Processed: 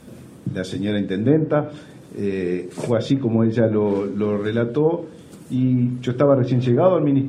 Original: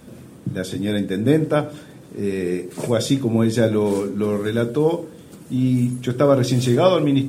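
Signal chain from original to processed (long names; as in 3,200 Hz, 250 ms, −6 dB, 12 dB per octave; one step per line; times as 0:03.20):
treble cut that deepens with the level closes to 1,300 Hz, closed at −12.5 dBFS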